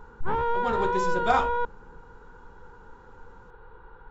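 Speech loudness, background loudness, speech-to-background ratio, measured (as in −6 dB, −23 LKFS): −29.0 LKFS, −28.0 LKFS, −1.0 dB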